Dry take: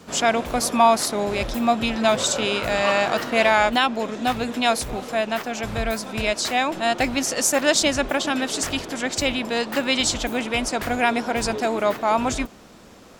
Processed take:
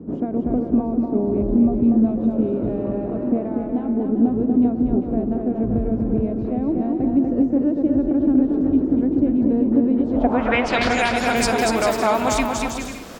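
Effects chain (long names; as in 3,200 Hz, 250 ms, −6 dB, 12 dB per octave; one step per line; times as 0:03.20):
downward compressor, threshold −25 dBFS, peak gain reduction 13.5 dB
low-pass filter sweep 310 Hz → 16,000 Hz, 0:09.97–0:11.27
bouncing-ball delay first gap 240 ms, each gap 0.65×, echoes 5
level +7.5 dB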